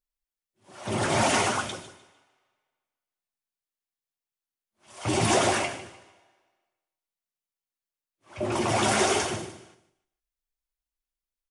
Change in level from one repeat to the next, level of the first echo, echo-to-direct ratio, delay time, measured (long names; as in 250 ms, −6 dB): −10.0 dB, −15.0 dB, −14.5 dB, 151 ms